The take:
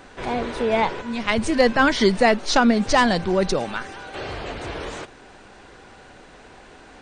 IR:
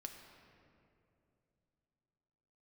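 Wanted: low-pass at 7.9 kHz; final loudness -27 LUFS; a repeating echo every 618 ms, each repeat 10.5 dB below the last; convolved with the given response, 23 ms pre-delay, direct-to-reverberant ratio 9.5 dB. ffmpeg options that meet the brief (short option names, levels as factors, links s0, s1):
-filter_complex "[0:a]lowpass=7900,aecho=1:1:618|1236|1854:0.299|0.0896|0.0269,asplit=2[s0][s1];[1:a]atrim=start_sample=2205,adelay=23[s2];[s1][s2]afir=irnorm=-1:irlink=0,volume=0.531[s3];[s0][s3]amix=inputs=2:normalize=0,volume=0.473"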